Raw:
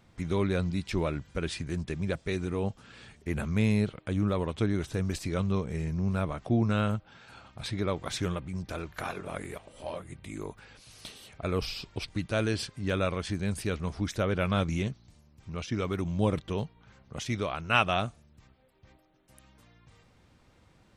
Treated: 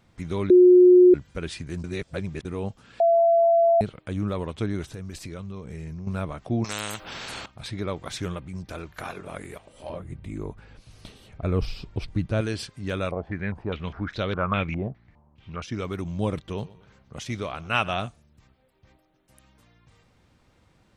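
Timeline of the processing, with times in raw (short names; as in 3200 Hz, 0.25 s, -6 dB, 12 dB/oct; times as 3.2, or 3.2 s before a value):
0.5–1.14 bleep 361 Hz -9.5 dBFS
1.84–2.45 reverse
3–3.81 bleep 674 Hz -15 dBFS
4.87–6.07 compressor 5:1, threshold -33 dBFS
6.64–7.46 spectral compressor 4:1
9.89–12.41 tilt -2.5 dB/oct
13.11–15.62 stepped low-pass 4.9 Hz 720–4000 Hz
16.47–18.08 feedback echo 0.121 s, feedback 40%, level -20 dB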